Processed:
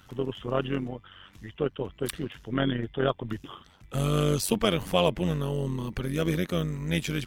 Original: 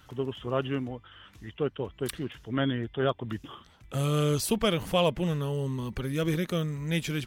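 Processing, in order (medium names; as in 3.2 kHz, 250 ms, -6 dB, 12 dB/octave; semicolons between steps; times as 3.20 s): AM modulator 94 Hz, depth 50%; trim +4 dB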